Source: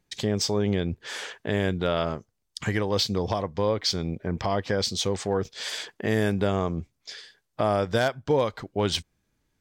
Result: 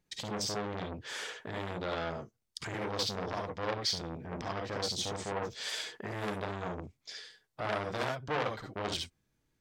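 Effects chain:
on a send at −3 dB: convolution reverb, pre-delay 49 ms
on the sum: saturating transformer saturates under 2,200 Hz
level −6 dB

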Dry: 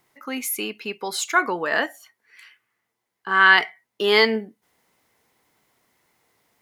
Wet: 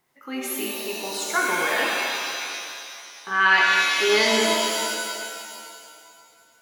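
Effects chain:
reverb with rising layers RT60 2.2 s, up +7 semitones, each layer −2 dB, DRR −2 dB
level −6 dB

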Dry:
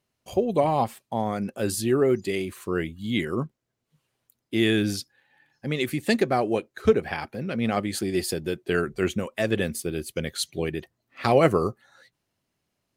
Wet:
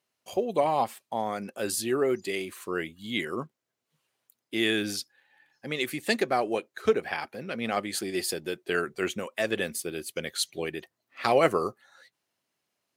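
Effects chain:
high-pass filter 530 Hz 6 dB per octave

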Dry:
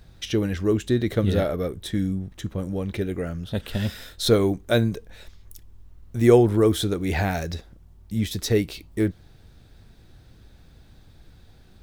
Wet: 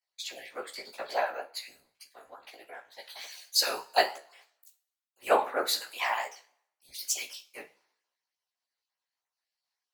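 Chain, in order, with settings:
time-frequency cells dropped at random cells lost 23%
high-pass filter 640 Hz 24 dB per octave
in parallel at 0 dB: downward compressor, threshold −43 dBFS, peak gain reduction 21 dB
on the sum: random phases in short frames
coupled-rooms reverb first 0.47 s, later 1.9 s, from −18 dB, DRR 6.5 dB
chorus effect 2.8 Hz, delay 16.5 ms, depth 5.4 ms
speed change +19%
multiband upward and downward expander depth 100%
level −4 dB

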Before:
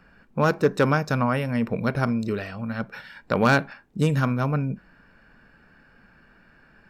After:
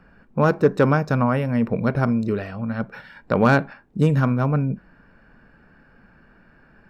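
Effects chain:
high-shelf EQ 2,000 Hz −10.5 dB
level +4 dB

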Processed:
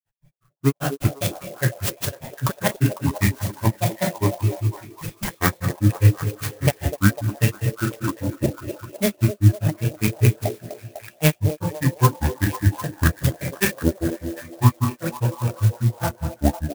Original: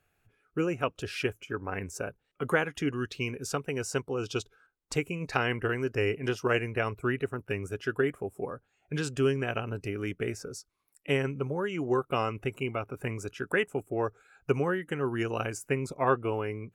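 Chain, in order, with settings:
high-shelf EQ 4,100 Hz +6.5 dB
granular cloud 179 ms, grains 5.4 per second, spray 15 ms, pitch spread up and down by 7 semitones
parametric band 110 Hz +12.5 dB 0.47 octaves
comb filter 1.2 ms, depth 40%
on a send at −3 dB: convolution reverb RT60 0.75 s, pre-delay 3 ms
on the sum: granular cloud 127 ms, grains 5 per second, pitch spread up and down by 0 semitones
automatic gain control gain up to 15 dB
echo through a band-pass that steps 250 ms, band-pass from 450 Hz, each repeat 0.7 octaves, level −6 dB
converter with an unsteady clock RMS 0.064 ms

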